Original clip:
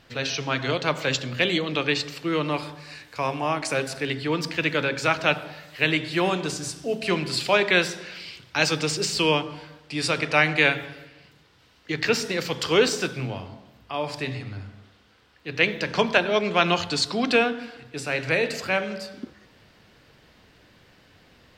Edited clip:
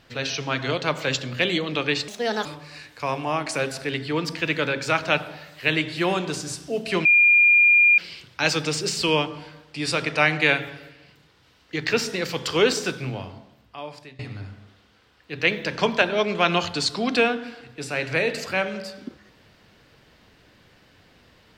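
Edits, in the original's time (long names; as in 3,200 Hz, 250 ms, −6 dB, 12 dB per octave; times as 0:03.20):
0:02.08–0:02.61: play speed 143%
0:07.21–0:08.14: beep over 2,410 Hz −12 dBFS
0:13.41–0:14.35: fade out, to −22 dB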